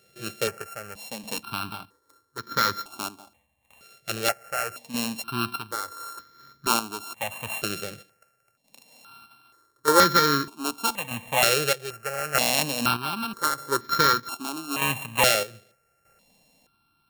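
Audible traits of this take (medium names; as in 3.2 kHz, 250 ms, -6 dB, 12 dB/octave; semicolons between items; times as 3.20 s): a buzz of ramps at a fixed pitch in blocks of 32 samples; chopped level 0.81 Hz, depth 60%, duty 50%; notches that jump at a steady rate 2.1 Hz 260–2700 Hz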